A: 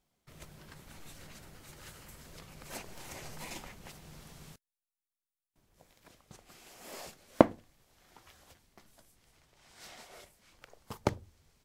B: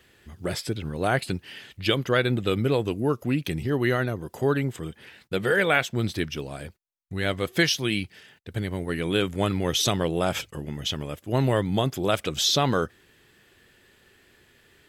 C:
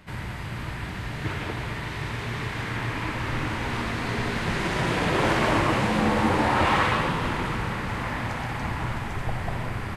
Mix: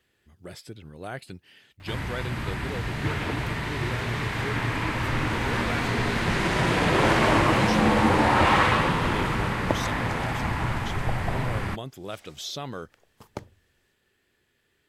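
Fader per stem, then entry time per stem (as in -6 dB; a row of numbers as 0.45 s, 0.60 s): -6.5 dB, -12.5 dB, +2.0 dB; 2.30 s, 0.00 s, 1.80 s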